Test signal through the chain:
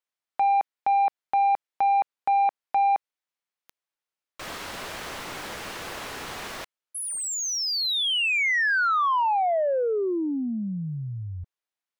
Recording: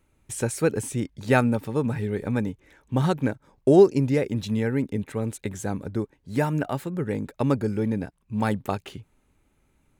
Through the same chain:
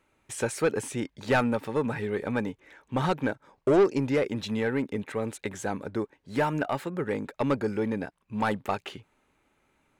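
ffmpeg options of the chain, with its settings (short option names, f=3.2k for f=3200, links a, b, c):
-filter_complex "[0:a]asplit=2[a][b];[b]highpass=f=720:p=1,volume=19dB,asoftclip=type=tanh:threshold=-5.5dB[c];[a][c]amix=inputs=2:normalize=0,lowpass=f=2.7k:p=1,volume=-6dB,volume=-7.5dB"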